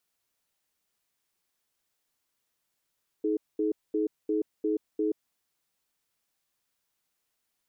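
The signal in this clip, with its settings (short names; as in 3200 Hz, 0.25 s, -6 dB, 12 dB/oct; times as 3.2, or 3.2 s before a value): cadence 316 Hz, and 426 Hz, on 0.13 s, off 0.22 s, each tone -27 dBFS 1.90 s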